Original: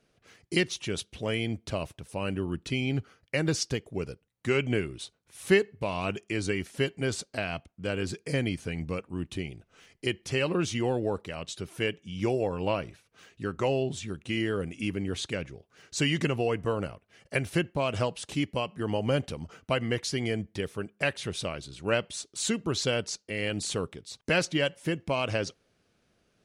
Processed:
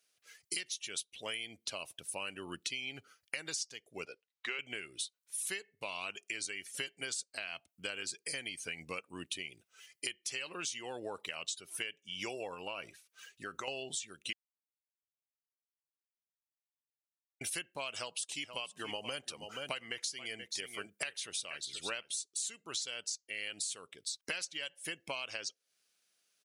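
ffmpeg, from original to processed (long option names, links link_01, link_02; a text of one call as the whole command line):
ffmpeg -i in.wav -filter_complex "[0:a]asettb=1/sr,asplit=3[link_01][link_02][link_03];[link_01]atrim=end=4.054[link_04];[link_02]atrim=start=4.05:end=4.59,asetpts=PTS-STARTPTS,afade=type=in:duration=0.004:curve=qsin,afade=type=out:start_time=0.536:duration=0.004:curve=qsin,acrossover=split=290 5400:gain=0.158 1 0.0631[link_05][link_06][link_07];[link_05][link_06][link_07]amix=inputs=3:normalize=0[link_08];[link_03]atrim=start=4.586[link_09];[link_04][link_08]acrossfade=duration=0.004:curve1=hsin:curve2=qsin[link_10];[link_10][link_09]acrossfade=duration=0.004:curve1=qsin:curve2=hsin,asettb=1/sr,asplit=3[link_11][link_12][link_13];[link_11]atrim=end=12.544[link_14];[link_12]atrim=start=12.54:end=13.68,asetpts=PTS-STARTPTS,afade=type=in:duration=0.004:curve=qsin,afade=type=out:start_time=1.136:duration=0.004:curve=qsin,acompressor=threshold=-33dB:ratio=4:attack=3.2:release=140:knee=1:detection=peak[link_15];[link_13]atrim=start=13.676[link_16];[link_14][link_15]acrossfade=duration=0.004:curve1=hsin:curve2=qsin[link_17];[link_17][link_16]acrossfade=duration=0.004:curve1=qsin:curve2=hsin,asplit=3[link_18][link_19][link_20];[link_18]afade=type=out:start_time=18.42:duration=0.02[link_21];[link_19]aecho=1:1:479:0.237,afade=type=in:start_time=18.42:duration=0.02,afade=type=out:start_time=22.12:duration=0.02[link_22];[link_20]afade=type=in:start_time=22.12:duration=0.02[link_23];[link_21][link_22][link_23]amix=inputs=3:normalize=0,asplit=3[link_24][link_25][link_26];[link_24]atrim=end=14.33,asetpts=PTS-STARTPTS,afade=type=out:start_time=14.326:duration=0.004:curve=hsin[link_27];[link_25]atrim=start=14.33:end=17.41,asetpts=PTS-STARTPTS,volume=0[link_28];[link_26]atrim=start=17.41,asetpts=PTS-STARTPTS,afade=type=in:duration=0.004:curve=hsin[link_29];[link_27][link_28][link_29]concat=n=3:v=0:a=1,afftdn=noise_reduction=14:noise_floor=-49,aderivative,acompressor=threshold=-54dB:ratio=10,volume=17.5dB" out.wav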